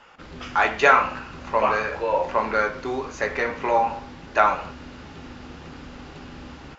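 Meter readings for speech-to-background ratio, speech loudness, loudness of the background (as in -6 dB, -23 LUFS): 19.0 dB, -22.5 LUFS, -41.5 LUFS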